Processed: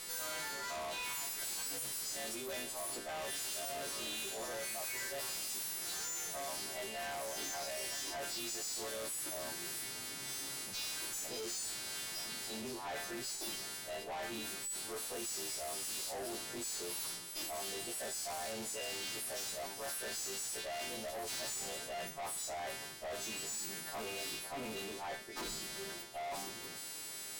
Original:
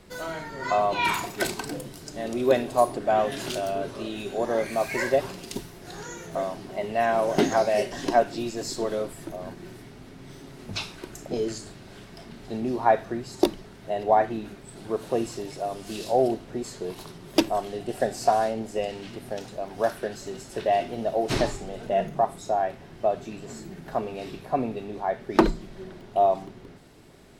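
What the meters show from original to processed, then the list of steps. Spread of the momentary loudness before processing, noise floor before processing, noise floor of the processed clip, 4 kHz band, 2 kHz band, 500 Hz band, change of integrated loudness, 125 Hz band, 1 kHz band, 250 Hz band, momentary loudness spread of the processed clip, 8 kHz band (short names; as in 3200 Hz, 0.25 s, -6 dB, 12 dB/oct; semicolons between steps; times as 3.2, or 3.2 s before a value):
17 LU, -46 dBFS, -46 dBFS, -2.5 dB, -9.0 dB, -19.5 dB, -12.5 dB, -20.0 dB, -18.5 dB, -20.0 dB, 4 LU, +3.5 dB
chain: frequency quantiser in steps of 2 st; reverse; compressor 6:1, threshold -31 dBFS, peak gain reduction 17 dB; reverse; tilt +3 dB/oct; tube stage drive 42 dB, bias 0.4; gain +2.5 dB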